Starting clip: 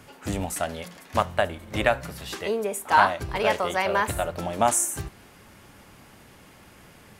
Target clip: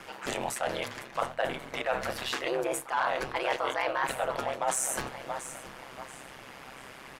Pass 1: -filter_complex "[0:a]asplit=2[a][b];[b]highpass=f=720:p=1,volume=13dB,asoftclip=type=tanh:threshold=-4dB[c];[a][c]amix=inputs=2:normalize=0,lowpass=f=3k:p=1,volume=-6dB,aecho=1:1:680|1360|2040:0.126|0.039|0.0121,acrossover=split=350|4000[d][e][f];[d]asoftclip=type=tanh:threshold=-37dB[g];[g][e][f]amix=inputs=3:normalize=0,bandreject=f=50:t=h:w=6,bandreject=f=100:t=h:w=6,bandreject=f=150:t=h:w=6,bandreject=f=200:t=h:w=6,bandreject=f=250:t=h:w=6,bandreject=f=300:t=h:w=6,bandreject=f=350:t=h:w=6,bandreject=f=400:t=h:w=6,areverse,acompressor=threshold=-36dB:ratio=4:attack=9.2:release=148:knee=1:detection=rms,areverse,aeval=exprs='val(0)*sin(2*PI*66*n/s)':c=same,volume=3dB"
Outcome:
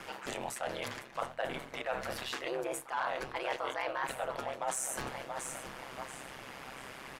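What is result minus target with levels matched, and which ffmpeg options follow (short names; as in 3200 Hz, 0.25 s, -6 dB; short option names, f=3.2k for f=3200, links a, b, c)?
compressor: peak gain reduction +6 dB
-filter_complex "[0:a]asplit=2[a][b];[b]highpass=f=720:p=1,volume=13dB,asoftclip=type=tanh:threshold=-4dB[c];[a][c]amix=inputs=2:normalize=0,lowpass=f=3k:p=1,volume=-6dB,aecho=1:1:680|1360|2040:0.126|0.039|0.0121,acrossover=split=350|4000[d][e][f];[d]asoftclip=type=tanh:threshold=-37dB[g];[g][e][f]amix=inputs=3:normalize=0,bandreject=f=50:t=h:w=6,bandreject=f=100:t=h:w=6,bandreject=f=150:t=h:w=6,bandreject=f=200:t=h:w=6,bandreject=f=250:t=h:w=6,bandreject=f=300:t=h:w=6,bandreject=f=350:t=h:w=6,bandreject=f=400:t=h:w=6,areverse,acompressor=threshold=-28dB:ratio=4:attack=9.2:release=148:knee=1:detection=rms,areverse,aeval=exprs='val(0)*sin(2*PI*66*n/s)':c=same,volume=3dB"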